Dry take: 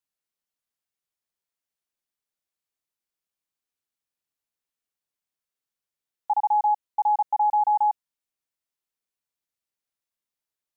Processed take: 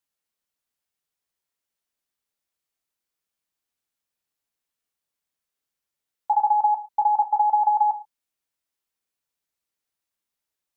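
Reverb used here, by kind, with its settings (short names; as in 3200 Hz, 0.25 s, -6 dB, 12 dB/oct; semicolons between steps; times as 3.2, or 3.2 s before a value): non-linear reverb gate 0.15 s falling, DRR 8.5 dB; gain +3 dB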